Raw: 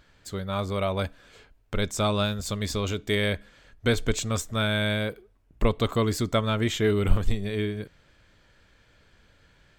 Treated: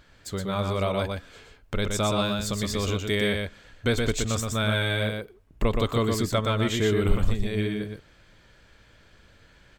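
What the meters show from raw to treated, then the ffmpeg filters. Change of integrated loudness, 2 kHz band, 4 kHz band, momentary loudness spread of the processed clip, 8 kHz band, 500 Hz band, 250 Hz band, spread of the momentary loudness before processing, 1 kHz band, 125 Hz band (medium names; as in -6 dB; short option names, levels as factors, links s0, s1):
+0.5 dB, +1.0 dB, +1.0 dB, 10 LU, +1.5 dB, +0.5 dB, +1.0 dB, 9 LU, +1.0 dB, +0.5 dB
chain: -filter_complex "[0:a]asplit=2[s0][s1];[s1]acompressor=threshold=0.0282:ratio=6,volume=0.891[s2];[s0][s2]amix=inputs=2:normalize=0,aecho=1:1:121:0.631,volume=0.708"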